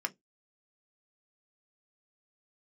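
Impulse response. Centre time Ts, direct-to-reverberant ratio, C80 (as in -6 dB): 3 ms, 6.0 dB, 38.5 dB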